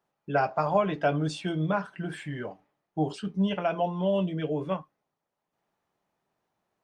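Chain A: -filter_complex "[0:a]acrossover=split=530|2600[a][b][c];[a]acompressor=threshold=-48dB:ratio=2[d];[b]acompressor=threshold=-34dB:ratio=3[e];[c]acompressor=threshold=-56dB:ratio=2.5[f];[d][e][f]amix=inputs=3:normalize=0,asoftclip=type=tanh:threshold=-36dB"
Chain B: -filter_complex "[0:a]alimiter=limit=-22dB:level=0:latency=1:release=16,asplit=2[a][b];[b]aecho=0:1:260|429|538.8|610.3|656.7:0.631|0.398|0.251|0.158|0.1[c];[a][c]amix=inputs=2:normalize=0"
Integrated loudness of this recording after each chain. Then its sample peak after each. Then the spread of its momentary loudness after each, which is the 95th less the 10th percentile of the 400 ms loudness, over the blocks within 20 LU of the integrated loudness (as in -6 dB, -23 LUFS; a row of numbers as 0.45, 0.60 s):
-42.0, -30.5 LUFS; -36.0, -17.0 dBFS; 5, 8 LU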